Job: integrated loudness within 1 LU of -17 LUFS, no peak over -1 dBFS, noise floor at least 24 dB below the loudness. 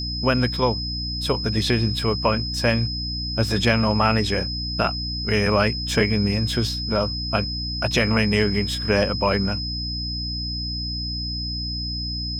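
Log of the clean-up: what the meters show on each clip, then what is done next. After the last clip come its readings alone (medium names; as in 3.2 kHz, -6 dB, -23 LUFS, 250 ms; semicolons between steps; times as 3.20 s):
hum 60 Hz; highest harmonic 300 Hz; hum level -28 dBFS; steady tone 5.1 kHz; tone level -28 dBFS; loudness -22.5 LUFS; peak level -4.0 dBFS; loudness target -17.0 LUFS
-> hum notches 60/120/180/240/300 Hz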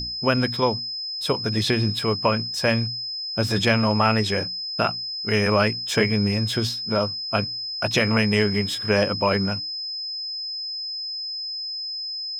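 hum not found; steady tone 5.1 kHz; tone level -28 dBFS
-> band-stop 5.1 kHz, Q 30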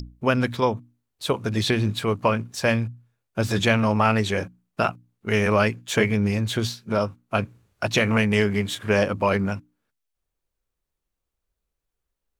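steady tone not found; loudness -23.5 LUFS; peak level -4.5 dBFS; loudness target -17.0 LUFS
-> trim +6.5 dB; peak limiter -1 dBFS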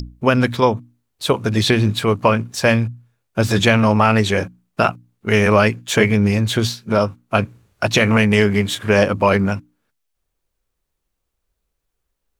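loudness -17.0 LUFS; peak level -1.0 dBFS; noise floor -76 dBFS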